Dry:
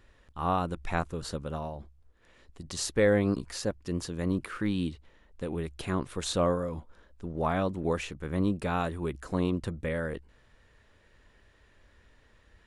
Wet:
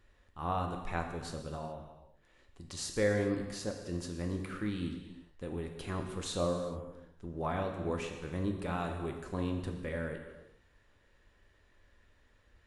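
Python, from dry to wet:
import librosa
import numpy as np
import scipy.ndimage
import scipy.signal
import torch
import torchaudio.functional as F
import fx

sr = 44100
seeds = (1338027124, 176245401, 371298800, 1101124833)

y = fx.peak_eq(x, sr, hz=1800.0, db=-8.5, octaves=0.78, at=(6.37, 6.78))
y = fx.rev_gated(y, sr, seeds[0], gate_ms=450, shape='falling', drr_db=3.0)
y = y * 10.0 ** (-7.0 / 20.0)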